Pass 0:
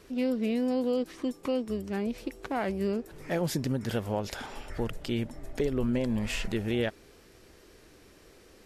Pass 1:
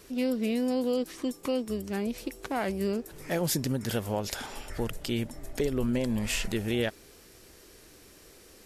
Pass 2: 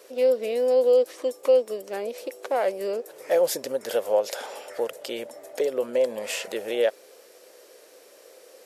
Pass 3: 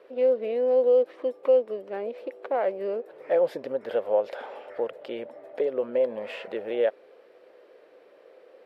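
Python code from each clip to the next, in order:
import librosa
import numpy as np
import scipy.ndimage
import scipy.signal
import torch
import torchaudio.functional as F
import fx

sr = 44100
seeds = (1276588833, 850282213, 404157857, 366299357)

y1 = fx.high_shelf(x, sr, hz=5400.0, db=11.5)
y2 = fx.highpass_res(y1, sr, hz=530.0, q=4.9)
y3 = fx.air_absorb(y2, sr, metres=470.0)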